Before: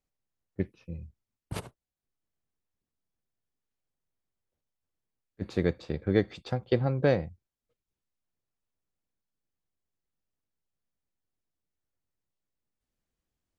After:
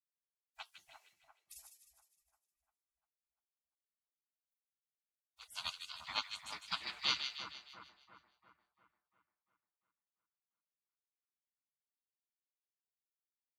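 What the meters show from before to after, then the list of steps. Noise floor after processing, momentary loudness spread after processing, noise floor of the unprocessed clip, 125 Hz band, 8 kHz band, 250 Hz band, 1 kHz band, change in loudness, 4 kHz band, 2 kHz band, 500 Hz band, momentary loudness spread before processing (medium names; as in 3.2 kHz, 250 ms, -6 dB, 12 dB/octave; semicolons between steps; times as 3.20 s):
under -85 dBFS, 22 LU, under -85 dBFS, -35.5 dB, no reading, -31.5 dB, -5.0 dB, -9.5 dB, +8.5 dB, -4.0 dB, -32.0 dB, 17 LU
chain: frequency weighting A; spectral gate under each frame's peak -30 dB weak; treble shelf 5.4 kHz +6.5 dB; on a send: two-band feedback delay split 1.6 kHz, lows 347 ms, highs 154 ms, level -7.5 dB; on the sum: trim +12 dB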